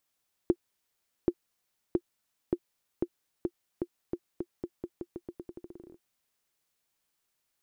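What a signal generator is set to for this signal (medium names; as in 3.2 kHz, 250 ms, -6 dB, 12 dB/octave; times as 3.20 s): bouncing ball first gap 0.78 s, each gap 0.86, 349 Hz, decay 58 ms -12 dBFS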